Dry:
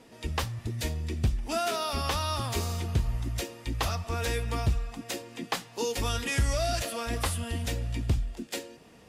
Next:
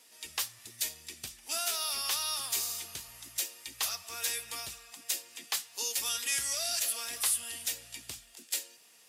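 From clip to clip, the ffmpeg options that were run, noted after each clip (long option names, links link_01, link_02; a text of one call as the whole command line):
ffmpeg -i in.wav -af "aderivative,volume=6.5dB" out.wav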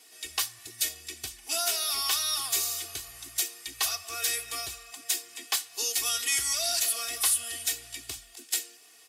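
ffmpeg -i in.wav -af "aecho=1:1:2.7:0.89,volume=2dB" out.wav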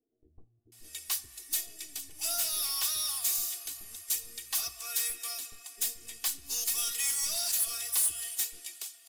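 ffmpeg -i in.wav -filter_complex "[0:a]aeval=exprs='(tanh(14.1*val(0)+0.45)-tanh(0.45))/14.1':channel_layout=same,crystalizer=i=1.5:c=0,acrossover=split=400[link_01][link_02];[link_02]adelay=720[link_03];[link_01][link_03]amix=inputs=2:normalize=0,volume=-6.5dB" out.wav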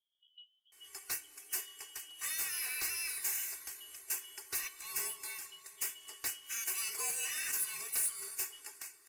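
ffmpeg -i in.wav -af "afftfilt=real='real(if(lt(b,272),68*(eq(floor(b/68),0)*1+eq(floor(b/68),1)*3+eq(floor(b/68),2)*0+eq(floor(b/68),3)*2)+mod(b,68),b),0)':imag='imag(if(lt(b,272),68*(eq(floor(b/68),0)*1+eq(floor(b/68),1)*3+eq(floor(b/68),2)*0+eq(floor(b/68),3)*2)+mod(b,68),b),0)':win_size=2048:overlap=0.75,volume=-6dB" out.wav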